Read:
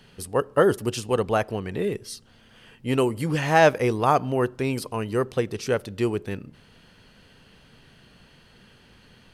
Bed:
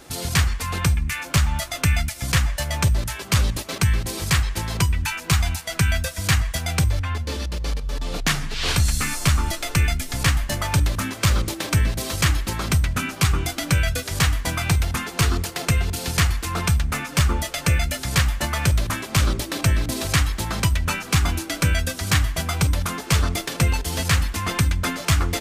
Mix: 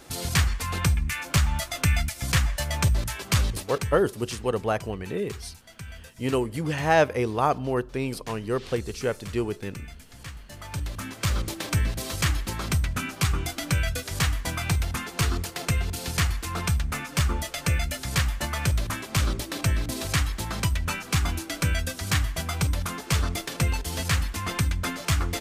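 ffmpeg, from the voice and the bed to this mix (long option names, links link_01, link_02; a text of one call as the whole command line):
ffmpeg -i stem1.wav -i stem2.wav -filter_complex "[0:a]adelay=3350,volume=-3dB[link_01];[1:a]volume=13dB,afade=type=out:start_time=3.32:duration=0.75:silence=0.125893,afade=type=in:start_time=10.45:duration=1.07:silence=0.158489[link_02];[link_01][link_02]amix=inputs=2:normalize=0" out.wav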